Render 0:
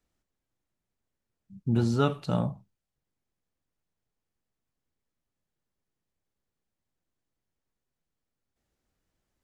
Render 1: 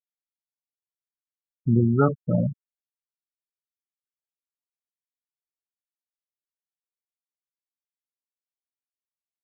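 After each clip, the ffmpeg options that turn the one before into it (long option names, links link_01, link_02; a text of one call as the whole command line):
ffmpeg -i in.wav -af "afftfilt=real='re*gte(hypot(re,im),0.1)':imag='im*gte(hypot(re,im),0.1)':win_size=1024:overlap=0.75,volume=5.5dB" out.wav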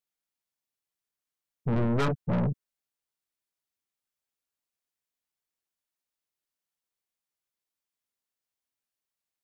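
ffmpeg -i in.wav -af "aeval=exprs='(tanh(31.6*val(0)+0.3)-tanh(0.3))/31.6':channel_layout=same,volume=6dB" out.wav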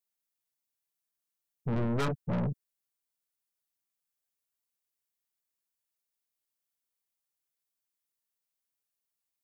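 ffmpeg -i in.wav -af "highshelf=frequency=7100:gain=9,volume=-4dB" out.wav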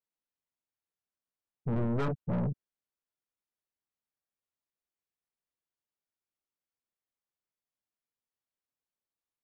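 ffmpeg -i in.wav -af "lowpass=frequency=1300:poles=1" out.wav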